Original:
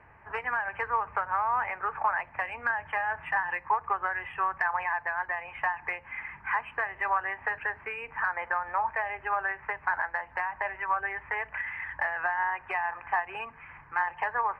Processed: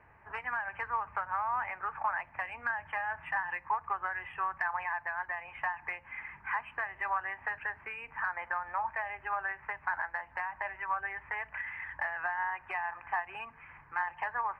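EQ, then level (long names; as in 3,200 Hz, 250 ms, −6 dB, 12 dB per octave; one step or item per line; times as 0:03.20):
dynamic equaliser 450 Hz, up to −8 dB, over −52 dBFS, Q 2.4
−4.5 dB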